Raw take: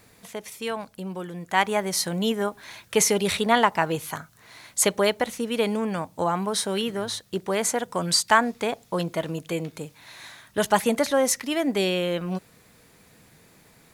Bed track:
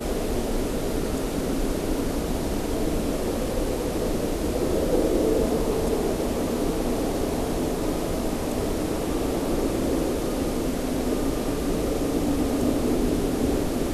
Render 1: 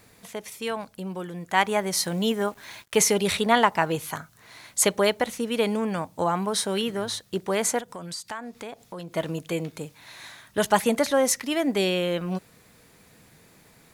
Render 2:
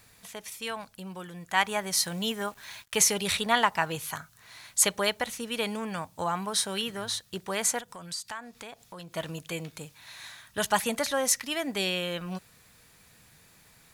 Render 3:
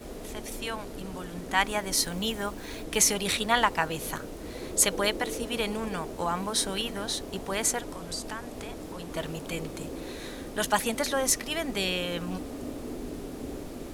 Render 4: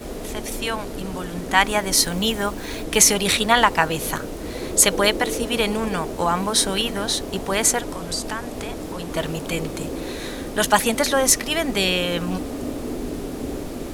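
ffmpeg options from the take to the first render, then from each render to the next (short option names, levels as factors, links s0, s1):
-filter_complex "[0:a]asettb=1/sr,asplit=3[s0][s1][s2];[s0]atrim=end=1.974[s3];[s1]atrim=start=1.97:end=3.12,asetpts=PTS-STARTPTS,afade=t=in:d=0.004:c=qsin,afade=t=out:st=1.146:d=0.004:c=qsin,acrusher=bits=7:mix=0:aa=0.5[s4];[s2]atrim=start=3.116[s5];[s3][s4]acrossfade=d=0.004:c1=hsin:c2=qsin[s6];[s6][s5]acrossfade=d=0.004:c1=qsin:c2=hsin,asettb=1/sr,asplit=3[s7][s8][s9];[s7]atrim=end=7.804[s10];[s8]atrim=start=7.8:end=9.15,asetpts=PTS-STARTPTS,afade=t=in:d=0.004:c=qsin,afade=t=out:st=1.346:d=0.004:c=qsin,acompressor=threshold=0.0112:ratio=2.5:attack=3.2:release=140:knee=1:detection=peak[s11];[s9]atrim=start=9.146[s12];[s10][s11]acrossfade=d=0.004:c1=hsin:c2=qsin[s13];[s13][s12]acrossfade=d=0.004:c1=qsin:c2=hsin"
-af "equalizer=f=340:w=0.51:g=-10,bandreject=f=2100:w=22"
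-filter_complex "[1:a]volume=0.2[s0];[0:a][s0]amix=inputs=2:normalize=0"
-af "volume=2.66,alimiter=limit=0.891:level=0:latency=1"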